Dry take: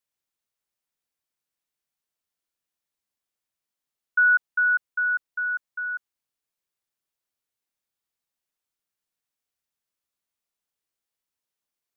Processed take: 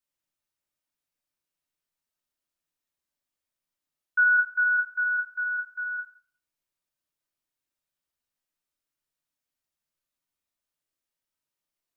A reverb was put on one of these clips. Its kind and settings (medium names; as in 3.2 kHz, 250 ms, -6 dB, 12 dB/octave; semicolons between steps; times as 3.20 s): simulated room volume 750 m³, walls furnished, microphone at 2.7 m; trim -4.5 dB